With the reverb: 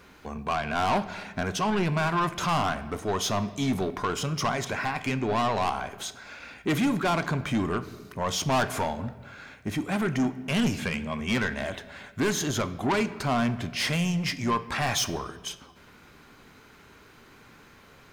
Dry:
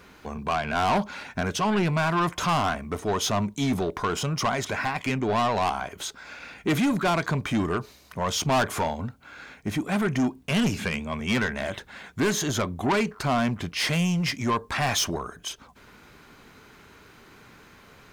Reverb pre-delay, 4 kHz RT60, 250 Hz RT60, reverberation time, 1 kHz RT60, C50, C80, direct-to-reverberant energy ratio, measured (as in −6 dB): 4 ms, 0.95 s, 1.9 s, 1.4 s, 1.2 s, 14.5 dB, 16.0 dB, 12.0 dB